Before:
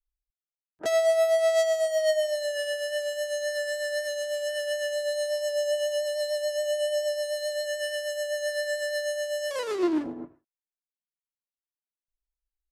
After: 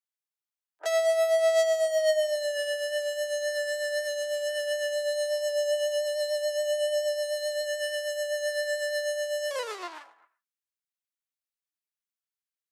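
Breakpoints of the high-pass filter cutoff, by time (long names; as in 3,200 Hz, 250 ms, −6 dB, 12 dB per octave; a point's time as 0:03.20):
high-pass filter 24 dB per octave
0:01.29 610 Hz
0:01.72 190 Hz
0:04.93 190 Hz
0:05.61 380 Hz
0:09.49 380 Hz
0:10.19 1,200 Hz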